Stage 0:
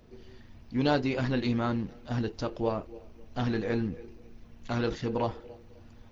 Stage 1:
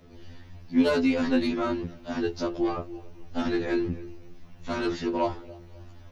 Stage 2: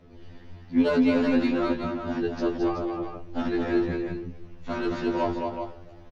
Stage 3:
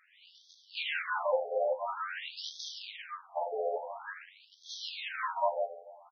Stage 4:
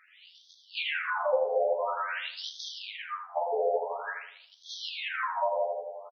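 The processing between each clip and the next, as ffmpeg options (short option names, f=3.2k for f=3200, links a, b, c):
-filter_complex "[0:a]acrossover=split=510[a][b];[b]asoftclip=type=tanh:threshold=-26dB[c];[a][c]amix=inputs=2:normalize=0,afftfilt=real='re*2*eq(mod(b,4),0)':imag='im*2*eq(mod(b,4),0)':win_size=2048:overlap=0.75,volume=6.5dB"
-filter_complex "[0:a]lowpass=f=2.7k:p=1,asplit=2[a][b];[b]aecho=0:1:218|376:0.631|0.447[c];[a][c]amix=inputs=2:normalize=0"
-af "lowshelf=f=370:g=-8,acrusher=bits=2:mode=log:mix=0:aa=0.000001,afftfilt=real='re*between(b*sr/1024,570*pow(4600/570,0.5+0.5*sin(2*PI*0.48*pts/sr))/1.41,570*pow(4600/570,0.5+0.5*sin(2*PI*0.48*pts/sr))*1.41)':imag='im*between(b*sr/1024,570*pow(4600/570,0.5+0.5*sin(2*PI*0.48*pts/sr))/1.41,570*pow(4600/570,0.5+0.5*sin(2*PI*0.48*pts/sr))*1.41)':win_size=1024:overlap=0.75,volume=5dB"
-filter_complex "[0:a]bass=f=250:g=0,treble=f=4k:g=-7,asplit=2[a][b];[b]adelay=82,lowpass=f=880:p=1,volume=-4dB,asplit=2[c][d];[d]adelay=82,lowpass=f=880:p=1,volume=0.53,asplit=2[e][f];[f]adelay=82,lowpass=f=880:p=1,volume=0.53,asplit=2[g][h];[h]adelay=82,lowpass=f=880:p=1,volume=0.53,asplit=2[i][j];[j]adelay=82,lowpass=f=880:p=1,volume=0.53,asplit=2[k][l];[l]adelay=82,lowpass=f=880:p=1,volume=0.53,asplit=2[m][n];[n]adelay=82,lowpass=f=880:p=1,volume=0.53[o];[c][e][g][i][k][m][o]amix=inputs=7:normalize=0[p];[a][p]amix=inputs=2:normalize=0,acrossover=split=470[q][r];[r]acompressor=threshold=-34dB:ratio=6[s];[q][s]amix=inputs=2:normalize=0,volume=6dB"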